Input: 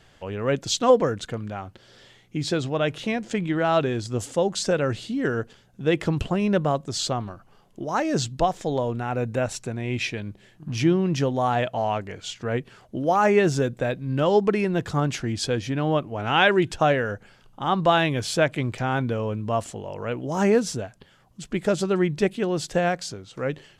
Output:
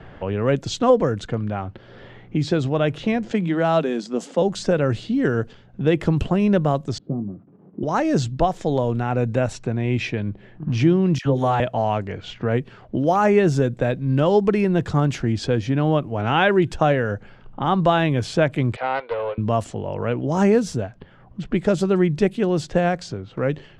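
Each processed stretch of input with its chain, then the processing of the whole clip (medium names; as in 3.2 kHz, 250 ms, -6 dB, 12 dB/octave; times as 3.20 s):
3.32–4.42 s: rippled Chebyshev high-pass 160 Hz, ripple 3 dB + treble shelf 4.9 kHz +8.5 dB
6.98–7.83 s: zero-crossing glitches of -22.5 dBFS + Butterworth band-pass 220 Hz, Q 1.1 + doubling 21 ms -9.5 dB
11.18–11.60 s: hum notches 50/100/150/200/250/300/350/400 Hz + phase dispersion lows, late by 71 ms, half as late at 1.2 kHz
18.76–19.38 s: Chebyshev band-pass 470–4400 Hz, order 4 + loudspeaker Doppler distortion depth 0.21 ms
whole clip: level-controlled noise filter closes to 1.9 kHz, open at -20 dBFS; tilt EQ -1.5 dB/octave; three bands compressed up and down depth 40%; trim +1.5 dB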